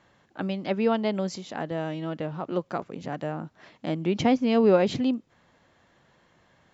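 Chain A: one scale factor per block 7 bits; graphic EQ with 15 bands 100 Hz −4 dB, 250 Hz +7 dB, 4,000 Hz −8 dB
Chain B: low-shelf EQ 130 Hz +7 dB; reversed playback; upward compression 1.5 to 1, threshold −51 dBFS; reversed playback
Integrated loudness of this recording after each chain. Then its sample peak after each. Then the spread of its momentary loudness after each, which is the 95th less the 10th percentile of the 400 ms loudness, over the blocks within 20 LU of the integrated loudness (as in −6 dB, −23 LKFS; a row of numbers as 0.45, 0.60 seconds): −23.5, −26.0 LKFS; −7.0, −8.5 dBFS; 16, 14 LU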